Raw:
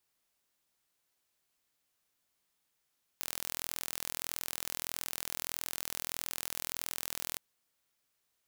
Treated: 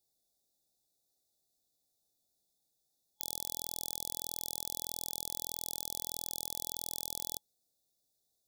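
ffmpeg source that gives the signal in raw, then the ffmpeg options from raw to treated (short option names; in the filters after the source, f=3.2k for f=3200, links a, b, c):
-f lavfi -i "aevalsrc='0.335*eq(mod(n,1060),0)':d=4.17:s=44100"
-af "afftfilt=real='re*(1-between(b*sr/4096,850,3400))':imag='im*(1-between(b*sr/4096,850,3400))':win_size=4096:overlap=0.75"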